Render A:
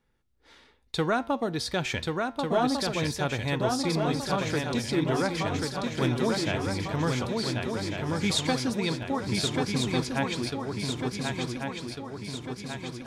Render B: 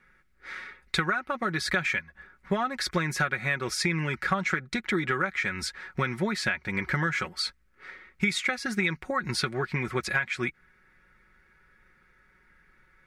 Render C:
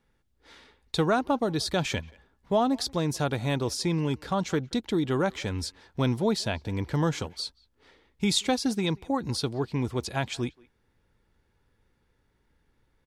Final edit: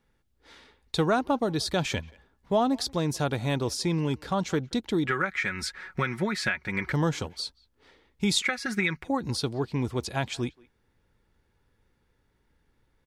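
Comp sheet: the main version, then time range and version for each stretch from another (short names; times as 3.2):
C
5.07–6.92 from B
8.42–9.04 from B
not used: A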